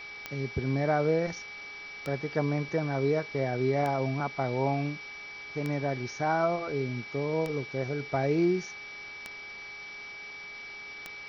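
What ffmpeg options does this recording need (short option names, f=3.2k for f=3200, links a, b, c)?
-af "adeclick=t=4,bandreject=f=410.6:t=h:w=4,bandreject=f=821.2:t=h:w=4,bandreject=f=1.2318k:t=h:w=4,bandreject=f=1.6424k:t=h:w=4,bandreject=f=2.053k:t=h:w=4,bandreject=f=2.3k:w=30,afwtdn=0.005"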